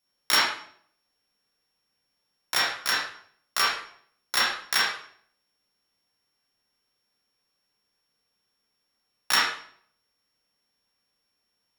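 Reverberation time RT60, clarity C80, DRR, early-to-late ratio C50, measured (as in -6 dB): 0.60 s, 5.5 dB, -5.5 dB, 0.5 dB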